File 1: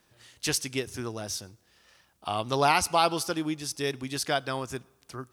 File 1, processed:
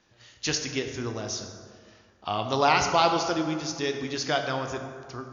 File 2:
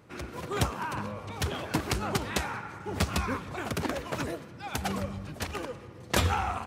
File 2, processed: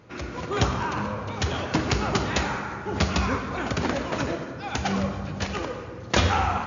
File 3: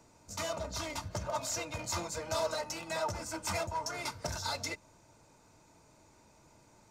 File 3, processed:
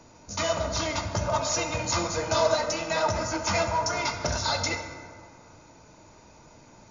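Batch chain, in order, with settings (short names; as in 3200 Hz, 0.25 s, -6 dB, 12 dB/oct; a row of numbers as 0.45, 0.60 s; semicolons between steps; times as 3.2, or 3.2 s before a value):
brick-wall FIR low-pass 7100 Hz; plate-style reverb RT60 2 s, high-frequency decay 0.5×, DRR 4.5 dB; match loudness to -27 LUFS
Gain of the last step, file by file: +1.0, +4.5, +8.5 dB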